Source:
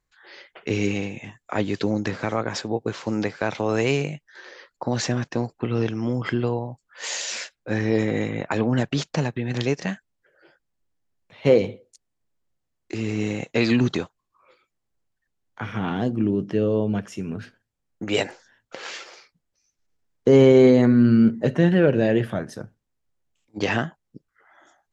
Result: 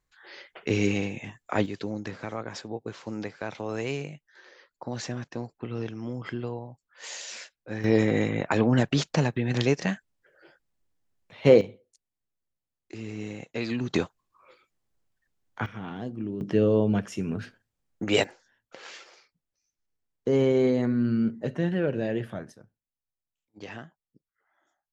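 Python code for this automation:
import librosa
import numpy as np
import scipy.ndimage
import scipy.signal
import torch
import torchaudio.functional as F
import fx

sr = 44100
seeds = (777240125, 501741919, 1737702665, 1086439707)

y = fx.gain(x, sr, db=fx.steps((0.0, -1.0), (1.66, -9.5), (7.84, 0.0), (11.61, -10.5), (13.94, 1.0), (15.66, -11.0), (16.41, 0.0), (18.24, -9.0), (22.52, -17.5)))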